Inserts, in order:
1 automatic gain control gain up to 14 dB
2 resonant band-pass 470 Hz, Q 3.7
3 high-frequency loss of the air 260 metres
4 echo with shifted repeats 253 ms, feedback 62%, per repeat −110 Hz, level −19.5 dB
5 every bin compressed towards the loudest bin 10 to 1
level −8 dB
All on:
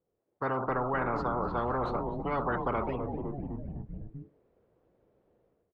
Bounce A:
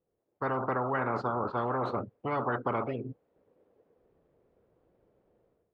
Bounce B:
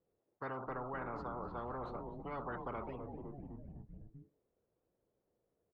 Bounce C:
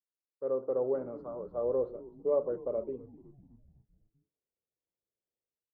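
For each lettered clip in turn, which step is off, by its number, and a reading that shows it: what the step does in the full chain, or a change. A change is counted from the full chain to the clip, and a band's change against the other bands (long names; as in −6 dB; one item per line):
4, change in momentary loudness spread −6 LU
1, change in integrated loudness −11.5 LU
5, 500 Hz band +19.0 dB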